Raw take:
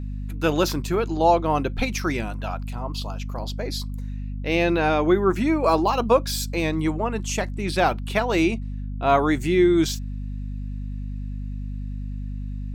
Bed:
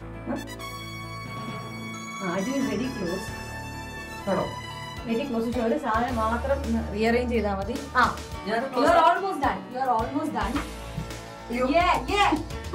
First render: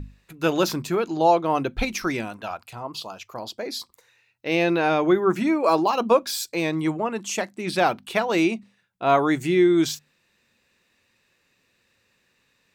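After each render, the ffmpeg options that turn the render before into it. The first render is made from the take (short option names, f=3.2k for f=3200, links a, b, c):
-af "bandreject=f=50:t=h:w=6,bandreject=f=100:t=h:w=6,bandreject=f=150:t=h:w=6,bandreject=f=200:t=h:w=6,bandreject=f=250:t=h:w=6"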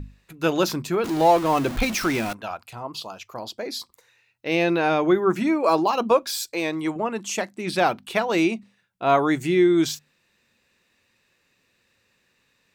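-filter_complex "[0:a]asettb=1/sr,asplit=3[a][b][c];[a]atrim=end=1.044[d];[b]atrim=start=1.04:end=2.33,asetpts=PTS-STARTPTS,afade=t=in:d=0.004:c=qsin,afade=t=out:st=1.286:d=0.004:c=qsin,aeval=exprs='val(0)+0.5*0.0473*sgn(val(0))':c=same[e];[c]atrim=start=2.326[f];[d][e]acrossfade=d=0.004:c1=hsin:c2=qsin[g];[g][f]acrossfade=d=0.004:c1=qsin:c2=hsin,asettb=1/sr,asplit=3[h][i][j];[h]atrim=end=6.114[k];[i]atrim=start=6.11:end=6.96,asetpts=PTS-STARTPTS,afade=t=in:d=0.004:c=qsin,afade=t=out:st=0.846:d=0.004:c=qsin,equalizer=f=180:t=o:w=0.77:g=-10[l];[j]atrim=start=6.956[m];[k][l]acrossfade=d=0.004:c1=hsin:c2=qsin[n];[n][m]acrossfade=d=0.004:c1=qsin:c2=hsin"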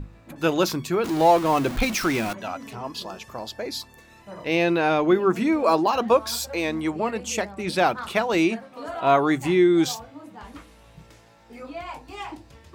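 -filter_complex "[1:a]volume=-14.5dB[a];[0:a][a]amix=inputs=2:normalize=0"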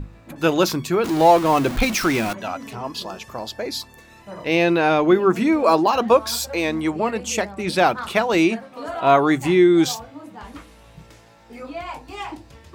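-af "volume=3.5dB"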